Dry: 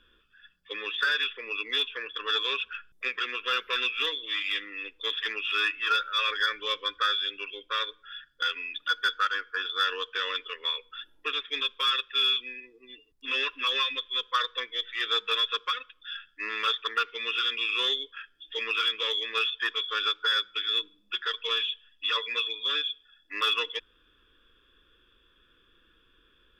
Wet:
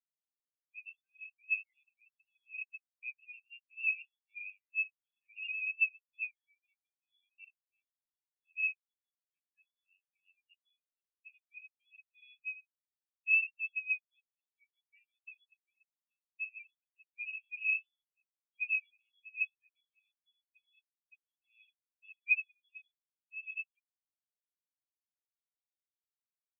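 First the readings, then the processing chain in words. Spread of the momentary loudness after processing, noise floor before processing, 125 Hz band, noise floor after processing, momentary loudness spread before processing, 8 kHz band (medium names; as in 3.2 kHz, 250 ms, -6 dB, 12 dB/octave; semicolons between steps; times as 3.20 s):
21 LU, -65 dBFS, no reading, under -85 dBFS, 9 LU, under -25 dB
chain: peak limiter -24.5 dBFS, peak gain reduction 10.5 dB; Butterworth band-pass 2.5 kHz, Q 3.7; spectral contrast expander 4:1; trim +7 dB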